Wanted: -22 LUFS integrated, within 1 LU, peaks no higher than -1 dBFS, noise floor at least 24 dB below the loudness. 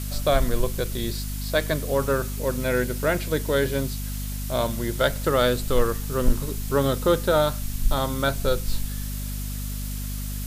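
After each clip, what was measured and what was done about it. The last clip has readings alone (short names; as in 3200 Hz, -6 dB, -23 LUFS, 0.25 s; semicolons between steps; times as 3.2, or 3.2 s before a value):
hum 50 Hz; harmonics up to 250 Hz; hum level -28 dBFS; noise floor -31 dBFS; noise floor target -50 dBFS; loudness -25.5 LUFS; peak -8.0 dBFS; loudness target -22.0 LUFS
-> notches 50/100/150/200/250 Hz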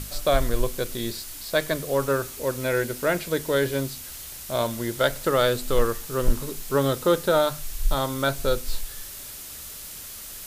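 hum none; noise floor -39 dBFS; noise floor target -50 dBFS
-> noise print and reduce 11 dB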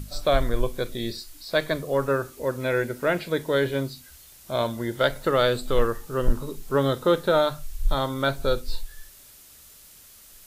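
noise floor -50 dBFS; loudness -25.5 LUFS; peak -8.5 dBFS; loudness target -22.0 LUFS
-> gain +3.5 dB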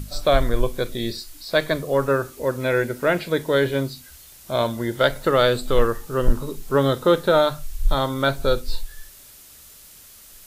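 loudness -22.0 LUFS; peak -5.0 dBFS; noise floor -47 dBFS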